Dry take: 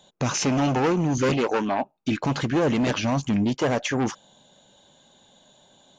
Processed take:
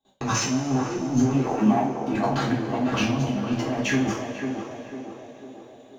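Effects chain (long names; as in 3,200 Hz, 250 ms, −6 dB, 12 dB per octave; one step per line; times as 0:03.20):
mu-law and A-law mismatch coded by A
noise gate with hold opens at −54 dBFS
high-shelf EQ 2,100 Hz −8 dB
compressor whose output falls as the input rises −28 dBFS, ratio −0.5
flanger 1.5 Hz, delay 7.1 ms, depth 2 ms, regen +56%
feedback echo with a band-pass in the loop 498 ms, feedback 61%, band-pass 500 Hz, level −3.5 dB
coupled-rooms reverb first 0.38 s, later 4.1 s, from −18 dB, DRR −6.5 dB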